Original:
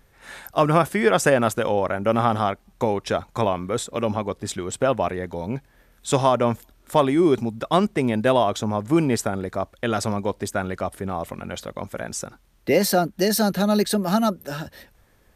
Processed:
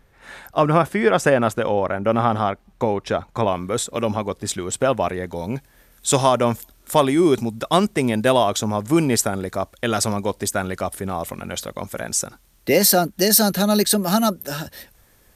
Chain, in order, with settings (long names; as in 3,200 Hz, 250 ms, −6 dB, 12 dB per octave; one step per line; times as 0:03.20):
high-shelf EQ 4,600 Hz −6.5 dB, from 0:03.48 +6 dB, from 0:05.35 +11 dB
level +1.5 dB